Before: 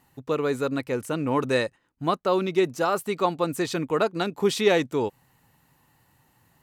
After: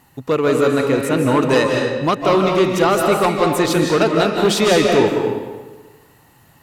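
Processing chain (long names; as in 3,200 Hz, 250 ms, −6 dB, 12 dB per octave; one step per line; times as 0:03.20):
harmonic generator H 5 −8 dB, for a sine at −8 dBFS
comb and all-pass reverb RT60 1.3 s, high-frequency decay 0.8×, pre-delay 120 ms, DRR 1 dB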